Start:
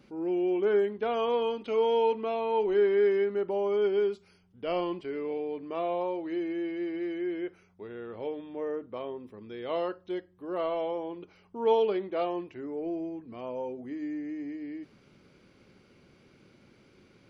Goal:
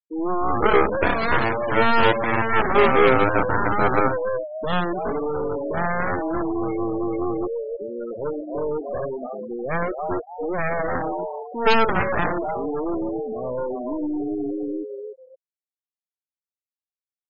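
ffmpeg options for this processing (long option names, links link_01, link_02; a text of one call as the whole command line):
ffmpeg -i in.wav -filter_complex "[0:a]asplit=5[link_01][link_02][link_03][link_04][link_05];[link_02]adelay=292,afreqshift=110,volume=-6dB[link_06];[link_03]adelay=584,afreqshift=220,volume=-16.5dB[link_07];[link_04]adelay=876,afreqshift=330,volume=-26.9dB[link_08];[link_05]adelay=1168,afreqshift=440,volume=-37.4dB[link_09];[link_01][link_06][link_07][link_08][link_09]amix=inputs=5:normalize=0,aeval=exprs='0.211*(cos(1*acos(clip(val(0)/0.211,-1,1)))-cos(1*PI/2))+0.00473*(cos(5*acos(clip(val(0)/0.211,-1,1)))-cos(5*PI/2))+0.0422*(cos(6*acos(clip(val(0)/0.211,-1,1)))-cos(6*PI/2))+0.0944*(cos(7*acos(clip(val(0)/0.211,-1,1)))-cos(7*PI/2))':channel_layout=same,afftfilt=real='re*gte(hypot(re,im),0.0447)':imag='im*gte(hypot(re,im),0.0447)':win_size=1024:overlap=0.75,volume=4.5dB" out.wav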